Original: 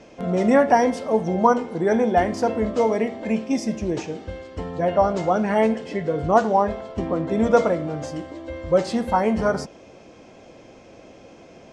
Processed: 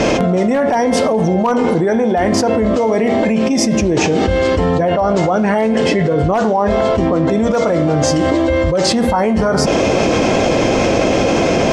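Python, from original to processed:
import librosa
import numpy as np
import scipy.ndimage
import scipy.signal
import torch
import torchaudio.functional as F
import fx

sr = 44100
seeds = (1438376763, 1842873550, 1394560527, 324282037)

y = fx.dynamic_eq(x, sr, hz=5800.0, q=1.1, threshold_db=-49.0, ratio=4.0, max_db=5, at=(6.65, 8.9))
y = np.clip(y, -10.0 ** (-8.5 / 20.0), 10.0 ** (-8.5 / 20.0))
y = fx.env_flatten(y, sr, amount_pct=100)
y = y * librosa.db_to_amplitude(-2.0)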